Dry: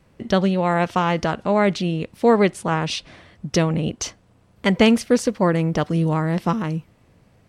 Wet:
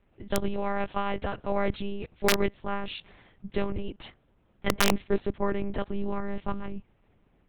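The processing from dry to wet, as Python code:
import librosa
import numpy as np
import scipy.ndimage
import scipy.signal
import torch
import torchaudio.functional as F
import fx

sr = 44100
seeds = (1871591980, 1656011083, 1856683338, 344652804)

y = fx.dynamic_eq(x, sr, hz=280.0, q=4.4, threshold_db=-34.0, ratio=4.0, max_db=4)
y = fx.lpc_monotone(y, sr, seeds[0], pitch_hz=200.0, order=8)
y = (np.mod(10.0 ** (2.5 / 20.0) * y + 1.0, 2.0) - 1.0) / 10.0 ** (2.5 / 20.0)
y = y * 10.0 ** (-9.0 / 20.0)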